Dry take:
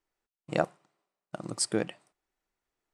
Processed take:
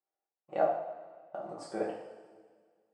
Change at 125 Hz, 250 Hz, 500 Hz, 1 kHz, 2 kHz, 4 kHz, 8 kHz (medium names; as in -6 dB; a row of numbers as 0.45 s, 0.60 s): -14.5 dB, -7.5 dB, +1.0 dB, +3.0 dB, -8.0 dB, -18.5 dB, -24.0 dB